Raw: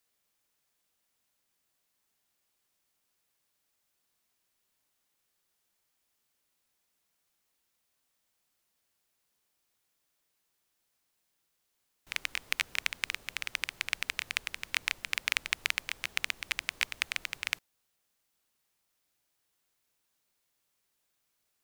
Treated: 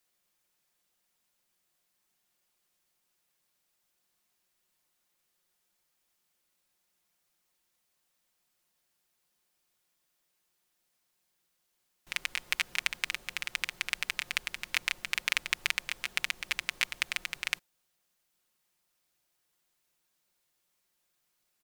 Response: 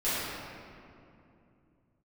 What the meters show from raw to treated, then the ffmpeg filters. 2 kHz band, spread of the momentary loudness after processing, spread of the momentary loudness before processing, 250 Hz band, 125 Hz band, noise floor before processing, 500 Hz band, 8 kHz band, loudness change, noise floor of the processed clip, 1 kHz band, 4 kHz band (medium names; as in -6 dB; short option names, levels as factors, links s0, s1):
+1.0 dB, 5 LU, 5 LU, +1.0 dB, 0.0 dB, -79 dBFS, +0.5 dB, +1.0 dB, +1.0 dB, -78 dBFS, +1.0 dB, +1.0 dB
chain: -af "aecho=1:1:5.6:0.45"